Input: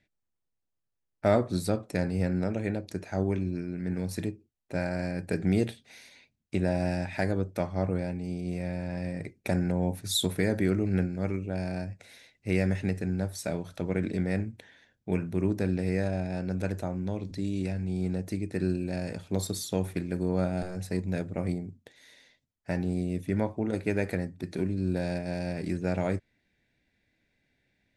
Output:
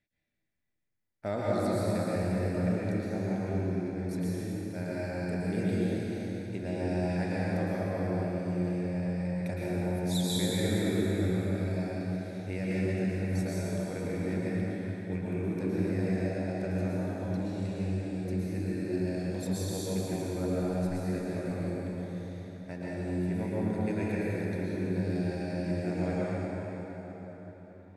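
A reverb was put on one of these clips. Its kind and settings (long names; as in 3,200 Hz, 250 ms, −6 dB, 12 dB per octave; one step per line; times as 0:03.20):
dense smooth reverb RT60 4.7 s, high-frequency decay 0.65×, pre-delay 100 ms, DRR −8 dB
level −10.5 dB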